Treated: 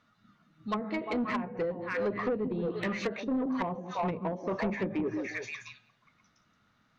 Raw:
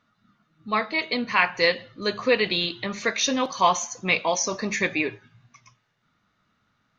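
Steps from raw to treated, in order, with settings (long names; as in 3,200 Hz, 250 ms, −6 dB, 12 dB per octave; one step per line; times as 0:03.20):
echo through a band-pass that steps 175 ms, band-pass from 240 Hz, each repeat 1.4 octaves, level −4 dB
treble cut that deepens with the level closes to 330 Hz, closed at −19 dBFS
soft clipping −24.5 dBFS, distortion −12 dB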